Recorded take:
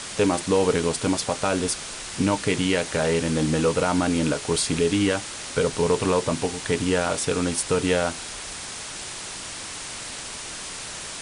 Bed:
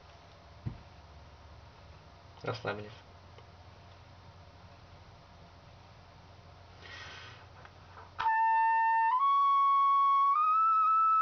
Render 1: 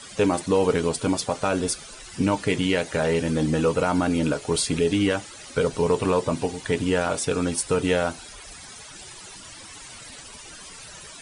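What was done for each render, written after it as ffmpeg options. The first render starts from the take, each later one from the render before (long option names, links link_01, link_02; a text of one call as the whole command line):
ffmpeg -i in.wav -af "afftdn=noise_reduction=14:noise_floor=-35" out.wav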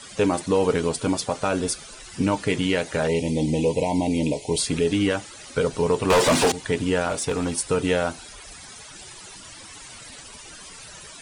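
ffmpeg -i in.wav -filter_complex "[0:a]asplit=3[link_01][link_02][link_03];[link_01]afade=type=out:start_time=3.07:duration=0.02[link_04];[link_02]asuperstop=centerf=1400:order=12:qfactor=1.4,afade=type=in:start_time=3.07:duration=0.02,afade=type=out:start_time=4.58:duration=0.02[link_05];[link_03]afade=type=in:start_time=4.58:duration=0.02[link_06];[link_04][link_05][link_06]amix=inputs=3:normalize=0,asettb=1/sr,asplit=3[link_07][link_08][link_09];[link_07]atrim=end=6.104[link_10];[link_08]atrim=start=6.1:end=6.52,asetpts=PTS-STARTPTS,afade=type=in:duration=0.004:curve=qsin,afade=type=out:start_time=0.416:duration=0.004:curve=qsin,asplit=2[link_11][link_12];[link_12]highpass=frequency=720:poles=1,volume=29dB,asoftclip=type=tanh:threshold=-10.5dB[link_13];[link_11][link_13]amix=inputs=2:normalize=0,lowpass=frequency=7700:poles=1,volume=-6dB[link_14];[link_09]atrim=start=6.516[link_15];[link_10][link_14]acrossfade=duration=0.004:curve1=hsin:curve2=qsin[link_16];[link_16][link_15]acrossfade=duration=0.004:curve1=qsin:curve2=hsin,asettb=1/sr,asplit=3[link_17][link_18][link_19];[link_17]atrim=end=7.094[link_20];[link_18]atrim=start=7.09:end=7.57,asetpts=PTS-STARTPTS,afade=type=in:duration=0.004:curve=qsin,afade=type=out:start_time=0.476:duration=0.004:curve=qsin,aeval=exprs='clip(val(0),-1,0.1)':channel_layout=same[link_21];[link_19]atrim=start=7.566[link_22];[link_20][link_21]acrossfade=duration=0.004:curve1=hsin:curve2=qsin[link_23];[link_23][link_22]acrossfade=duration=0.004:curve1=qsin:curve2=hsin" out.wav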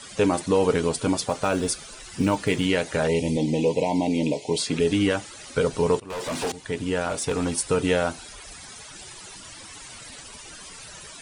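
ffmpeg -i in.wav -filter_complex "[0:a]asettb=1/sr,asplit=3[link_01][link_02][link_03];[link_01]atrim=end=1.234[link_04];[link_02]atrim=start=1.23:end=2.66,asetpts=PTS-STARTPTS,afade=type=in:duration=0.004:curve=qsin,afade=type=out:start_time=1.426:duration=0.004:curve=qsin,acrusher=bits=9:mode=log:mix=0:aa=0.000001[link_05];[link_03]atrim=start=2.656[link_06];[link_04][link_05]acrossfade=duration=0.004:curve1=hsin:curve2=qsin[link_07];[link_07][link_06]acrossfade=duration=0.004:curve1=qsin:curve2=hsin,asettb=1/sr,asplit=3[link_08][link_09][link_10];[link_08]atrim=end=3.374[link_11];[link_09]atrim=start=3.37:end=4.8,asetpts=PTS-STARTPTS,afade=type=in:duration=0.004:curve=qsin,afade=type=out:start_time=1.426:duration=0.004:curve=qsin,highpass=140,lowpass=7200[link_12];[link_10]atrim=start=4.796[link_13];[link_11][link_12]acrossfade=duration=0.004:curve1=hsin:curve2=qsin[link_14];[link_14][link_13]acrossfade=duration=0.004:curve1=qsin:curve2=hsin,asplit=2[link_15][link_16];[link_15]atrim=end=6,asetpts=PTS-STARTPTS,afade=type=out:start_time=5.996:duration=0.004:curve=hsin:silence=0.0794328[link_17];[link_16]atrim=start=6,asetpts=PTS-STARTPTS,afade=type=in:duration=1.41:silence=0.0794328[link_18];[link_17][link_18]concat=n=2:v=0:a=1" out.wav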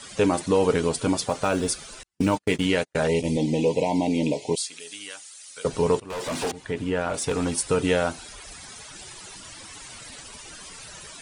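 ffmpeg -i in.wav -filter_complex "[0:a]asettb=1/sr,asplit=3[link_01][link_02][link_03];[link_01]atrim=end=2.034[link_04];[link_02]atrim=start=2.03:end=3.71,asetpts=PTS-STARTPTS,afade=type=in:duration=0.004:curve=qsin,afade=type=out:start_time=1.676:duration=0.004:curve=qsin,agate=range=-46dB:threshold=-27dB:ratio=16:release=100:detection=peak[link_05];[link_03]atrim=start=3.706[link_06];[link_04][link_05]acrossfade=duration=0.004:curve1=hsin:curve2=qsin[link_07];[link_07][link_06]acrossfade=duration=0.004:curve1=qsin:curve2=hsin,asettb=1/sr,asplit=3[link_08][link_09][link_10];[link_08]atrim=end=4.554[link_11];[link_09]atrim=start=4.55:end=5.65,asetpts=PTS-STARTPTS,afade=type=in:duration=0.004:curve=qsin,afade=type=out:start_time=1.096:duration=0.004:curve=qsin,aderivative[link_12];[link_10]atrim=start=5.646[link_13];[link_11][link_12]acrossfade=duration=0.004:curve1=hsin:curve2=qsin[link_14];[link_14][link_13]acrossfade=duration=0.004:curve1=qsin:curve2=hsin,asettb=1/sr,asplit=3[link_15][link_16][link_17];[link_15]atrim=end=6.514[link_18];[link_16]atrim=start=6.51:end=7.14,asetpts=PTS-STARTPTS,afade=type=in:duration=0.004:curve=qsin,afade=type=out:start_time=0.626:duration=0.004:curve=qsin,acrossover=split=3200[link_19][link_20];[link_20]acompressor=threshold=-50dB:ratio=4:attack=1:release=60[link_21];[link_19][link_21]amix=inputs=2:normalize=0[link_22];[link_17]atrim=start=7.136[link_23];[link_18][link_22]acrossfade=duration=0.004:curve1=hsin:curve2=qsin[link_24];[link_24][link_23]acrossfade=duration=0.004:curve1=qsin:curve2=hsin" out.wav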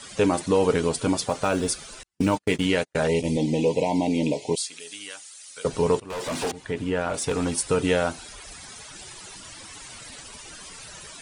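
ffmpeg -i in.wav -af anull out.wav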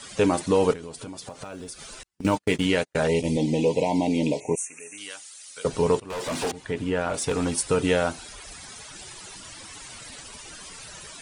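ffmpeg -i in.wav -filter_complex "[0:a]asettb=1/sr,asplit=3[link_01][link_02][link_03];[link_01]atrim=end=0.734[link_04];[link_02]atrim=start=0.73:end=2.25,asetpts=PTS-STARTPTS,afade=type=in:duration=0.004:curve=qsin,afade=type=out:start_time=1.516:duration=0.004:curve=qsin,acompressor=threshold=-35dB:ratio=6:attack=3.2:release=140:knee=1:detection=peak[link_05];[link_03]atrim=start=2.246[link_06];[link_04][link_05]acrossfade=duration=0.004:curve1=hsin:curve2=qsin[link_07];[link_07][link_06]acrossfade=duration=0.004:curve1=qsin:curve2=hsin,asettb=1/sr,asplit=3[link_08][link_09][link_10];[link_08]atrim=end=4.404[link_11];[link_09]atrim=start=4.4:end=4.98,asetpts=PTS-STARTPTS,afade=type=in:duration=0.004:curve=qsin,afade=type=out:start_time=0.576:duration=0.004:curve=qsin,asuperstop=centerf=4000:order=20:qfactor=1.3[link_12];[link_10]atrim=start=4.976[link_13];[link_11][link_12]acrossfade=duration=0.004:curve1=hsin:curve2=qsin[link_14];[link_14][link_13]acrossfade=duration=0.004:curve1=qsin:curve2=hsin" out.wav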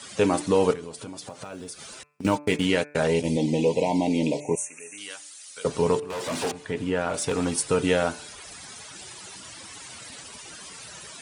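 ffmpeg -i in.wav -af "highpass=87,bandreject=frequency=147:width_type=h:width=4,bandreject=frequency=294:width_type=h:width=4,bandreject=frequency=441:width_type=h:width=4,bandreject=frequency=588:width_type=h:width=4,bandreject=frequency=735:width_type=h:width=4,bandreject=frequency=882:width_type=h:width=4,bandreject=frequency=1029:width_type=h:width=4,bandreject=frequency=1176:width_type=h:width=4,bandreject=frequency=1323:width_type=h:width=4,bandreject=frequency=1470:width_type=h:width=4,bandreject=frequency=1617:width_type=h:width=4,bandreject=frequency=1764:width_type=h:width=4,bandreject=frequency=1911:width_type=h:width=4,bandreject=frequency=2058:width_type=h:width=4,bandreject=frequency=2205:width_type=h:width=4,bandreject=frequency=2352:width_type=h:width=4,bandreject=frequency=2499:width_type=h:width=4,bandreject=frequency=2646:width_type=h:width=4" out.wav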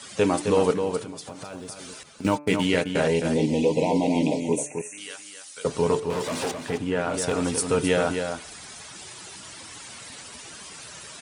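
ffmpeg -i in.wav -filter_complex "[0:a]asplit=2[link_01][link_02];[link_02]adelay=262.4,volume=-6dB,highshelf=frequency=4000:gain=-5.9[link_03];[link_01][link_03]amix=inputs=2:normalize=0" out.wav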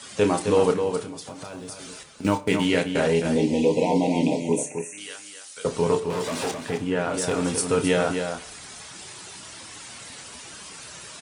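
ffmpeg -i in.wav -filter_complex "[0:a]asplit=2[link_01][link_02];[link_02]adelay=29,volume=-9dB[link_03];[link_01][link_03]amix=inputs=2:normalize=0,aecho=1:1:61|122|183|244:0.1|0.048|0.023|0.0111" out.wav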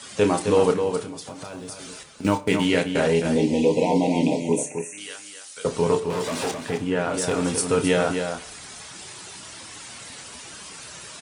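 ffmpeg -i in.wav -af "volume=1dB" out.wav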